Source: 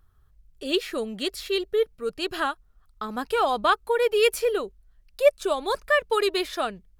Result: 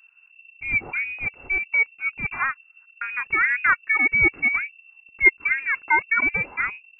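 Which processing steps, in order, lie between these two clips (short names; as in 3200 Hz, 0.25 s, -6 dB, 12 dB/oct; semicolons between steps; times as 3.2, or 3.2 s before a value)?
inverted band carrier 2700 Hz; gain +2 dB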